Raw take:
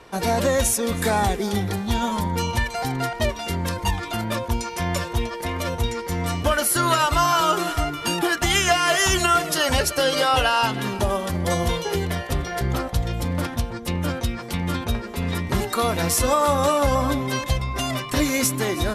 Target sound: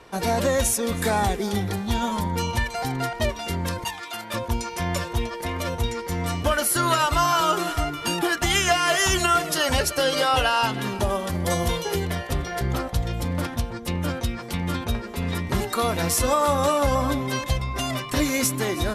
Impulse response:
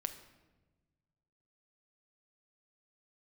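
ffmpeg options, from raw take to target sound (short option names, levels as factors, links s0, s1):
-filter_complex "[0:a]asettb=1/sr,asplit=3[s0][s1][s2];[s0]atrim=end=3.844[s3];[s1]atrim=start=3.84:end=4.34,asetpts=PTS-STARTPTS,afade=t=in:d=0.004:c=qsin,afade=t=out:st=0.496:d=0.004:c=qsin,highpass=f=1100:p=1[s4];[s2]atrim=start=4.336[s5];[s3][s4]acrossfade=d=0.004:c1=hsin:c2=qsin[s6];[s6][s5]acrossfade=d=0.004:c1=qsin:c2=hsin,asettb=1/sr,asplit=3[s7][s8][s9];[s7]atrim=end=11.324[s10];[s8]atrim=start=11.32:end=12,asetpts=PTS-STARTPTS,afade=t=in:d=0.004:c=qsin,afade=t=out:st=0.676:d=0.004:c=qsin,highshelf=f=8300:g=6[s11];[s9]atrim=start=11.996[s12];[s10][s11]acrossfade=d=0.004:c1=hsin:c2=qsin[s13];[s13][s12]acrossfade=d=0.004:c1=qsin:c2=hsin,volume=0.841"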